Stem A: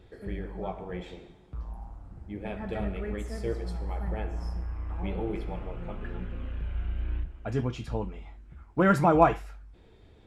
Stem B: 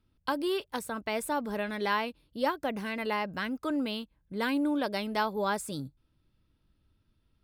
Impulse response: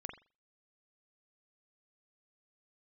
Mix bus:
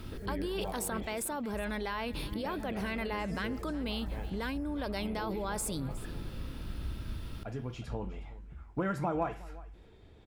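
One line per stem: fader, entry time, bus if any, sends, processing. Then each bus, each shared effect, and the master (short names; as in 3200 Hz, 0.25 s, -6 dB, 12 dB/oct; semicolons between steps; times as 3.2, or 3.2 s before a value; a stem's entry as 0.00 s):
-2.5 dB, 0.00 s, send -10 dB, echo send -19 dB, compressor 4:1, threshold -30 dBFS, peak gain reduction 13.5 dB; auto duck -7 dB, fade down 1.70 s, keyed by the second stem
-11.0 dB, 0.00 s, no send, echo send -17.5 dB, fast leveller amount 100%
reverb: on, pre-delay 42 ms
echo: echo 0.364 s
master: dry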